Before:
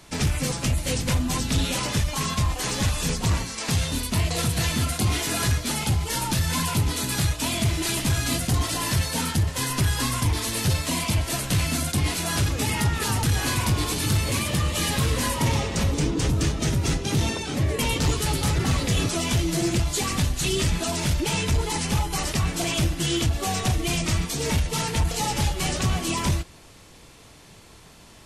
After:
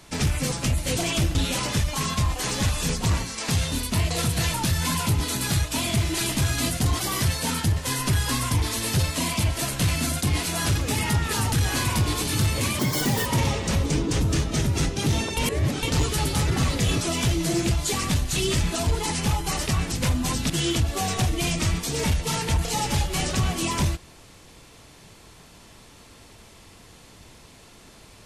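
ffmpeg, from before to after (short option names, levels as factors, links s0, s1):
-filter_complex "[0:a]asplit=13[s0][s1][s2][s3][s4][s5][s6][s7][s8][s9][s10][s11][s12];[s0]atrim=end=0.972[s13];[s1]atrim=start=22.578:end=22.962[s14];[s2]atrim=start=1.548:end=4.742[s15];[s3]atrim=start=6.218:end=8.684[s16];[s4]atrim=start=8.68:end=8.93,asetpts=PTS-STARTPTS,asetrate=49833,aresample=44100[s17];[s5]atrim=start=8.926:end=14.504[s18];[s6]atrim=start=14.5:end=15.34,asetpts=PTS-STARTPTS,asetrate=79380,aresample=44100[s19];[s7]atrim=start=15.336:end=17.452[s20];[s8]atrim=start=17.448:end=17.912,asetpts=PTS-STARTPTS,areverse[s21];[s9]atrim=start=17.908:end=20.952[s22];[s10]atrim=start=21.528:end=22.582[s23];[s11]atrim=start=0.968:end=1.552[s24];[s12]atrim=start=22.958[s25];[s13][s14]acrossfade=d=0.004:c1=hsin:c2=hsin[s26];[s26][s15]acrossfade=d=0.004:c1=hsin:c2=hsin[s27];[s27][s16]acrossfade=d=0.004:c1=hsin:c2=hsin[s28];[s28][s17]acrossfade=d=0.004:c1=hsin:c2=hsin[s29];[s29][s18]acrossfade=d=0.004:c1=hsin:c2=hsin[s30];[s30][s19]acrossfade=d=0.004:c1=hsin:c2=hsin[s31];[s31][s20]acrossfade=d=0.004:c1=hsin:c2=hsin[s32];[s32][s21]acrossfade=d=0.004:c1=hsin:c2=hsin[s33];[s33][s22]acrossfade=d=0.004:c1=hsin:c2=hsin[s34];[s34][s23]acrossfade=d=0.004:c1=hsin:c2=hsin[s35];[s35][s24]acrossfade=d=0.004:c1=hsin:c2=hsin[s36];[s36][s25]acrossfade=d=0.004:c1=hsin:c2=hsin"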